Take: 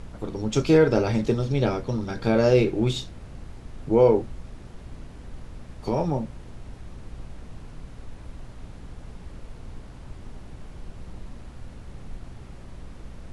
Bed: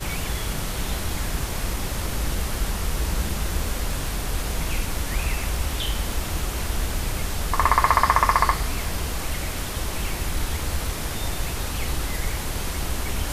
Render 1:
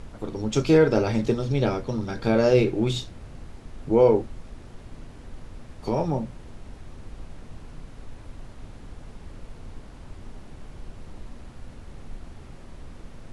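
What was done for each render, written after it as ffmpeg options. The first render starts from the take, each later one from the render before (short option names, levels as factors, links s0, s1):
-af "bandreject=f=60:t=h:w=4,bandreject=f=120:t=h:w=4,bandreject=f=180:t=h:w=4"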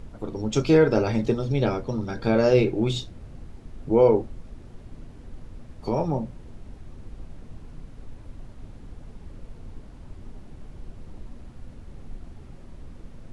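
-af "afftdn=nr=6:nf=-45"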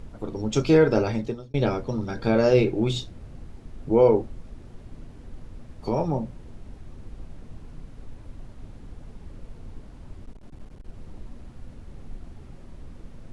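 -filter_complex "[0:a]asettb=1/sr,asplit=3[s0][s1][s2];[s0]atrim=end=10.244[s3];[s1]atrim=start=10.24:end=10.95,asetpts=PTS-STARTPTS,afade=t=in:d=0.004:c=qsin,afade=t=out:st=0.706:d=0.004:c=qsin,aeval=exprs='clip(val(0),-1,0.00562)':c=same[s4];[s2]atrim=start=10.946[s5];[s3][s4]acrossfade=d=0.004:c1=hsin:c2=qsin[s6];[s6][s5]acrossfade=d=0.004:c1=qsin:c2=hsin,asplit=2[s7][s8];[s7]atrim=end=1.54,asetpts=PTS-STARTPTS,afade=t=out:st=1.01:d=0.53[s9];[s8]atrim=start=1.54,asetpts=PTS-STARTPTS,afade=t=in:d=0.004:c=hsin[s10];[s9][s10]concat=n=2:v=0:a=1"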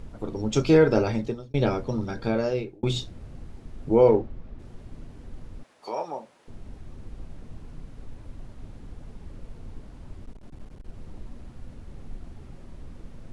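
-filter_complex "[0:a]asplit=3[s0][s1][s2];[s0]afade=t=out:st=4.06:d=0.02[s3];[s1]adynamicsmooth=sensitivity=6.5:basefreq=3600,afade=t=in:st=4.06:d=0.02,afade=t=out:st=4.58:d=0.02[s4];[s2]afade=t=in:st=4.58:d=0.02[s5];[s3][s4][s5]amix=inputs=3:normalize=0,asettb=1/sr,asplit=3[s6][s7][s8];[s6]atrim=end=5.634[s9];[s7]atrim=start=5.63:end=6.48,asetpts=PTS-STARTPTS,afade=t=in:d=0.004:c=qsin,afade=t=out:st=0.846:d=0.004:c=qsin,highpass=660[s10];[s8]atrim=start=6.476[s11];[s9][s10]acrossfade=d=0.004:c1=hsin:c2=qsin[s12];[s12][s11]acrossfade=d=0.004:c1=qsin:c2=hsin,asplit=2[s13][s14];[s13]atrim=end=2.83,asetpts=PTS-STARTPTS,afade=t=out:st=2.02:d=0.81[s15];[s14]atrim=start=2.83,asetpts=PTS-STARTPTS,afade=t=in:d=0.004:c=hsin[s16];[s15][s16]concat=n=2:v=0:a=1"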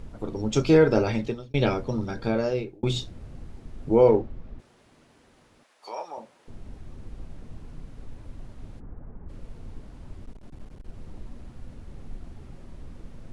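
-filter_complex "[0:a]asettb=1/sr,asplit=3[s0][s1][s2];[s0]atrim=end=1.084[s3];[s1]atrim=start=1.08:end=1.74,asetpts=PTS-STARTPTS,afade=t=in:d=0.004:c=qsin,afade=t=out:st=0.656:d=0.004:c=qsin,equalizer=f=2700:w=1.1:g=6.5[s4];[s2]atrim=start=1.736[s5];[s3][s4]acrossfade=d=0.004:c1=hsin:c2=qsin[s6];[s6][s5]acrossfade=d=0.004:c1=qsin:c2=hsin,asettb=1/sr,asplit=3[s7][s8][s9];[s7]atrim=end=4.604[s10];[s8]atrim=start=4.6:end=6.18,asetpts=PTS-STARTPTS,afade=t=in:d=0.004:c=qsin,afade=t=out:st=1.576:d=0.004:c=qsin,highpass=f=910:p=1[s11];[s9]atrim=start=6.176[s12];[s10][s11]acrossfade=d=0.004:c1=hsin:c2=qsin[s13];[s13][s12]acrossfade=d=0.004:c1=qsin:c2=hsin,asplit=3[s14][s15][s16];[s14]afade=t=out:st=8.79:d=0.02[s17];[s15]lowpass=f=1600:w=0.5412,lowpass=f=1600:w=1.3066,afade=t=in:st=8.79:d=0.02,afade=t=out:st=9.28:d=0.02[s18];[s16]afade=t=in:st=9.28:d=0.02[s19];[s17][s18][s19]amix=inputs=3:normalize=0"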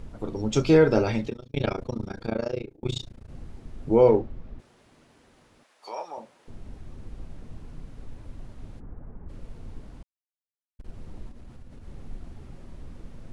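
-filter_complex "[0:a]asettb=1/sr,asplit=3[s0][s1][s2];[s0]atrim=end=1.294[s3];[s1]atrim=start=1.29:end=3.29,asetpts=PTS-STARTPTS,afade=t=in:d=0.004:c=qsin,afade=t=out:st=1.996:d=0.004:c=qsin,tremolo=f=28:d=0.974[s4];[s2]atrim=start=3.286[s5];[s3][s4]acrossfade=d=0.004:c1=hsin:c2=qsin[s6];[s6][s5]acrossfade=d=0.004:c1=qsin:c2=hsin,asettb=1/sr,asplit=3[s7][s8][s9];[s7]atrim=end=11.294[s10];[s8]atrim=start=11.29:end=11.86,asetpts=PTS-STARTPTS,afade=t=in:d=0.004:c=qsin,afade=t=out:st=0.566:d=0.004:c=qsin,acompressor=threshold=0.0112:ratio=6:attack=3.2:release=140:knee=1:detection=peak[s11];[s9]atrim=start=11.856[s12];[s10][s11]acrossfade=d=0.004:c1=hsin:c2=qsin[s13];[s13][s12]acrossfade=d=0.004:c1=qsin:c2=hsin,asplit=3[s14][s15][s16];[s14]atrim=end=10.03,asetpts=PTS-STARTPTS,afade=t=out:st=10.026:d=0.004:c=hsin[s17];[s15]atrim=start=10.03:end=10.79,asetpts=PTS-STARTPTS,volume=0[s18];[s16]atrim=start=10.79,asetpts=PTS-STARTPTS,afade=t=in:d=0.004:c=hsin[s19];[s17][s18][s19]concat=n=3:v=0:a=1"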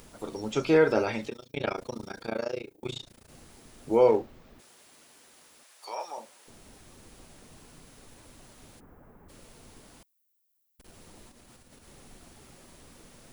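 -filter_complex "[0:a]acrossover=split=2600[s0][s1];[s1]acompressor=threshold=0.002:ratio=4:attack=1:release=60[s2];[s0][s2]amix=inputs=2:normalize=0,aemphasis=mode=production:type=riaa"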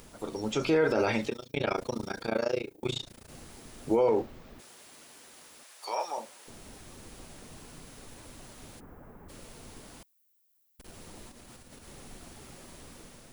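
-af "alimiter=limit=0.0944:level=0:latency=1:release=36,dynaudnorm=f=210:g=5:m=1.58"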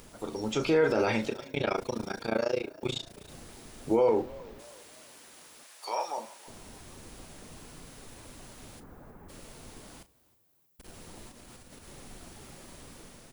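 -filter_complex "[0:a]asplit=2[s0][s1];[s1]adelay=36,volume=0.224[s2];[s0][s2]amix=inputs=2:normalize=0,asplit=4[s3][s4][s5][s6];[s4]adelay=316,afreqshift=44,volume=0.0794[s7];[s5]adelay=632,afreqshift=88,volume=0.0316[s8];[s6]adelay=948,afreqshift=132,volume=0.0127[s9];[s3][s7][s8][s9]amix=inputs=4:normalize=0"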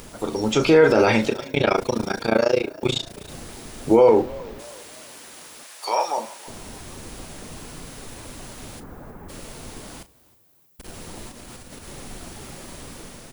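-af "volume=3.16"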